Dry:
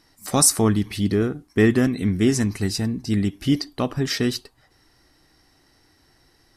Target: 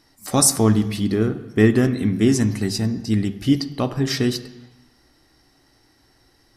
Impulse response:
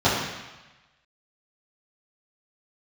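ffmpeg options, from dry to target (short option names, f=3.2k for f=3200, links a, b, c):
-filter_complex "[0:a]asplit=2[a][b];[1:a]atrim=start_sample=2205,highshelf=f=12k:g=8[c];[b][c]afir=irnorm=-1:irlink=0,volume=-29.5dB[d];[a][d]amix=inputs=2:normalize=0"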